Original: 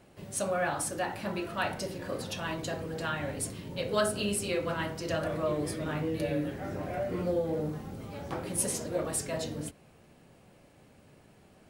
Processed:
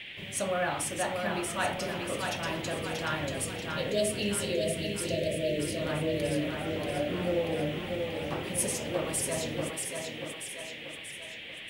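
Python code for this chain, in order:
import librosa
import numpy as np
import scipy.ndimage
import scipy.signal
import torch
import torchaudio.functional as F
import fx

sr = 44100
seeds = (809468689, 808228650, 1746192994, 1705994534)

y = fx.spec_erase(x, sr, start_s=3.29, length_s=2.48, low_hz=680.0, high_hz=2600.0)
y = fx.echo_thinned(y, sr, ms=635, feedback_pct=52, hz=200.0, wet_db=-4.0)
y = fx.dmg_noise_band(y, sr, seeds[0], low_hz=1800.0, high_hz=3400.0, level_db=-44.0)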